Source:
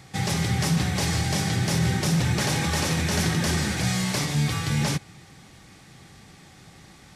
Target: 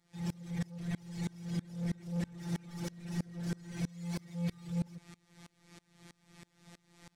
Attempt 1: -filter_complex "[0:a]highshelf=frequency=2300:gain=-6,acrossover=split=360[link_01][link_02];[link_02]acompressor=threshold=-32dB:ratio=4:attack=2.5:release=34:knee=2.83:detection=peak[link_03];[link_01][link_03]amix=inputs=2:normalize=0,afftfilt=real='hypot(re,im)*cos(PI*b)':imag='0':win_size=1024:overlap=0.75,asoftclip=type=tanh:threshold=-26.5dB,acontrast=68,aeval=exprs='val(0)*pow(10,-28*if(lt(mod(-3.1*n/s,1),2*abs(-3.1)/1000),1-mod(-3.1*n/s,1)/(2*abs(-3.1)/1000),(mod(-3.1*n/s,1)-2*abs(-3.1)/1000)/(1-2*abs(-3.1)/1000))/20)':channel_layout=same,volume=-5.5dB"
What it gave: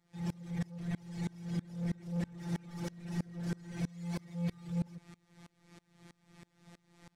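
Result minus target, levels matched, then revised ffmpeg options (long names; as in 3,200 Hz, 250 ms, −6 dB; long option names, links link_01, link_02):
4,000 Hz band −3.0 dB
-filter_complex "[0:a]acrossover=split=360[link_01][link_02];[link_02]acompressor=threshold=-32dB:ratio=4:attack=2.5:release=34:knee=2.83:detection=peak[link_03];[link_01][link_03]amix=inputs=2:normalize=0,afftfilt=real='hypot(re,im)*cos(PI*b)':imag='0':win_size=1024:overlap=0.75,asoftclip=type=tanh:threshold=-26.5dB,acontrast=68,aeval=exprs='val(0)*pow(10,-28*if(lt(mod(-3.1*n/s,1),2*abs(-3.1)/1000),1-mod(-3.1*n/s,1)/(2*abs(-3.1)/1000),(mod(-3.1*n/s,1)-2*abs(-3.1)/1000)/(1-2*abs(-3.1)/1000))/20)':channel_layout=same,volume=-5.5dB"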